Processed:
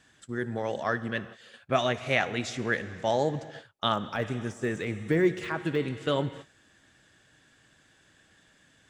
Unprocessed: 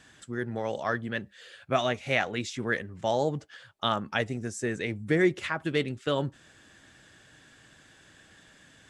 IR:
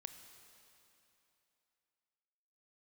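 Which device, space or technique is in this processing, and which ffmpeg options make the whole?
keyed gated reverb: -filter_complex "[0:a]asplit=3[a][b][c];[1:a]atrim=start_sample=2205[d];[b][d]afir=irnorm=-1:irlink=0[e];[c]apad=whole_len=392358[f];[e][f]sidechaingate=range=-47dB:threshold=-47dB:ratio=16:detection=peak,volume=5.5dB[g];[a][g]amix=inputs=2:normalize=0,asettb=1/sr,asplit=3[h][i][j];[h]atrim=end=3.944[k];[i]atrim=start=3.94:end=6.02,asetpts=PTS-STARTPTS,afade=t=in:d=0.004:c=qsin,afade=t=out:st=2.076:d=0.004:c=qsin,deesser=0.95[l];[j]atrim=start=6.016[m];[k][l]acrossfade=d=0.004:c1=hsin:c2=qsin[n];[n][m]acrossfade=d=0.004:c1=qsin:c2=hsin,volume=-5.5dB"

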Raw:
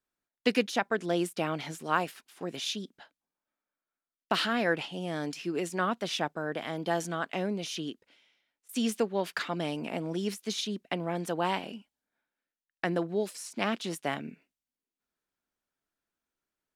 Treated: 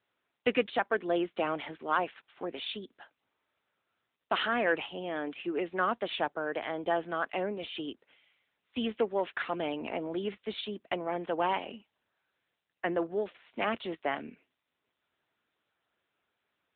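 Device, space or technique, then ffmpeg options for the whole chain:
telephone: -af "highpass=320,lowpass=3.4k,asoftclip=type=tanh:threshold=-18dB,volume=2.5dB" -ar 8000 -c:a libopencore_amrnb -b:a 10200

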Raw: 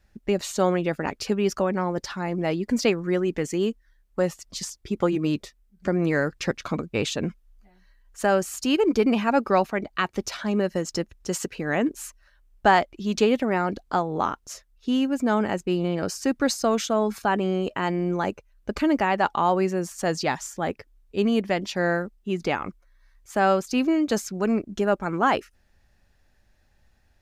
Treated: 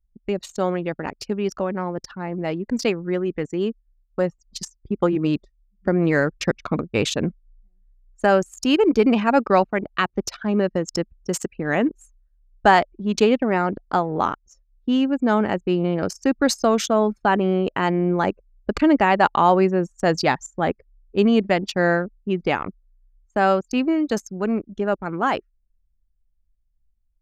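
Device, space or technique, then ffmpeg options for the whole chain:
voice memo with heavy noise removal: -af "anlmdn=25.1,dynaudnorm=f=320:g=31:m=11.5dB,volume=-1dB"

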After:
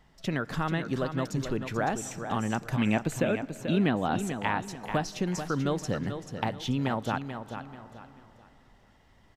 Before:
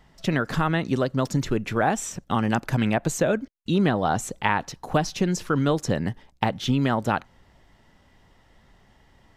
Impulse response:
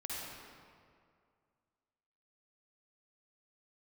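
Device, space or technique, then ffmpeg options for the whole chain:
ducked reverb: -filter_complex "[0:a]asplit=3[a][b][c];[1:a]atrim=start_sample=2205[d];[b][d]afir=irnorm=-1:irlink=0[e];[c]apad=whole_len=412866[f];[e][f]sidechaincompress=threshold=-35dB:ratio=10:attack=5.8:release=477,volume=-5.5dB[g];[a][g]amix=inputs=2:normalize=0,asettb=1/sr,asplit=3[h][i][j];[h]atrim=end=2.774[k];[i]atrim=start=2.77:end=4.27,asetpts=PTS-STARTPTS,afade=t=in:d=0.004:c=qsin,afade=t=out:st=1.496:d=0.004:c=qsin,equalizer=f=250:t=o:w=0.67:g=6,equalizer=f=2.5k:t=o:w=0.67:g=7,equalizer=f=6.3k:t=o:w=0.67:g=-6[l];[j]atrim=start=4.266[m];[k][l]acrossfade=d=0.004:c1=hsin:c2=qsin[n];[n][m]acrossfade=d=0.004:c1=qsin:c2=hsin,aecho=1:1:437|874|1311|1748:0.376|0.117|0.0361|0.0112,volume=-7dB"

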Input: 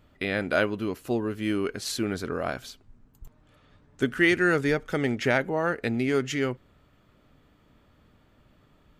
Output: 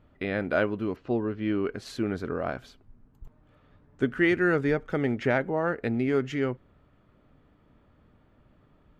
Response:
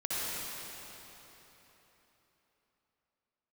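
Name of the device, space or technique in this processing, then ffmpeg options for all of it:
through cloth: -filter_complex "[0:a]highshelf=f=3.7k:g=-18,asettb=1/sr,asplit=3[a][b][c];[a]atrim=end=0.964[d];[b]atrim=start=0.96:end=1.72,asetpts=PTS-STARTPTS,afade=t=in:d=0.004:c=qsin,afade=t=out:st=0.756:d=0.004:c=qsin,lowpass=f=5.1k:w=0.5412,lowpass=f=5.1k:w=1.3066[e];[c]atrim=start=1.716[f];[d][e]acrossfade=d=0.004:c1=hsin:c2=qsin[g];[g][f]acrossfade=d=0.004:c1=qsin:c2=hsin"

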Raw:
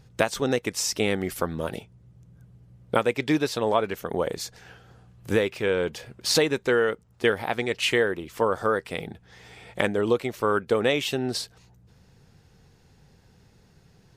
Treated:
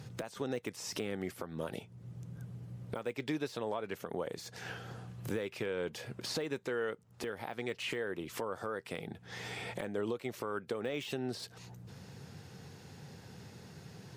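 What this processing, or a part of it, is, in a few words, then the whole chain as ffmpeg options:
podcast mastering chain: -af "highpass=f=93:w=0.5412,highpass=f=93:w=1.3066,deesser=0.85,acompressor=threshold=-46dB:ratio=2.5,alimiter=level_in=8dB:limit=-24dB:level=0:latency=1:release=262,volume=-8dB,volume=7.5dB" -ar 48000 -c:a libmp3lame -b:a 112k

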